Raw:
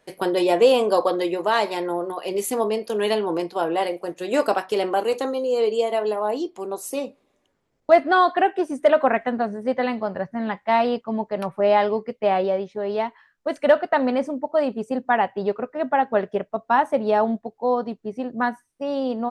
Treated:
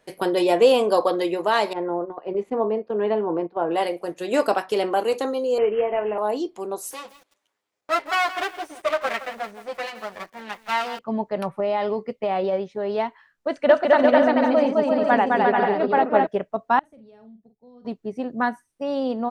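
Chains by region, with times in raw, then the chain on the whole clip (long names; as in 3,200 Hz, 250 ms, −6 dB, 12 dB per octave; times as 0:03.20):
0:01.73–0:03.71: noise gate −29 dBFS, range −8 dB + low-pass filter 1,300 Hz
0:05.58–0:06.18: variable-slope delta modulation 32 kbit/s + Butterworth low-pass 2,900 Hz 96 dB per octave + double-tracking delay 20 ms −10.5 dB
0:06.91–0:10.99: lower of the sound and its delayed copy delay 9.7 ms + high-pass filter 1,200 Hz 6 dB per octave + feedback echo at a low word length 167 ms, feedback 35%, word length 7 bits, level −13 dB
0:11.56–0:12.53: notch filter 1,600 Hz, Q 8.1 + downward compressor, threshold −19 dBFS
0:13.48–0:16.27: low-pass filter 5,700 Hz + bouncing-ball delay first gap 210 ms, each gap 0.65×, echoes 5, each echo −2 dB
0:16.79–0:17.85: guitar amp tone stack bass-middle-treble 10-0-1 + downward compressor 2.5 to 1, threshold −47 dBFS + double-tracking delay 45 ms −8 dB
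whole clip: no processing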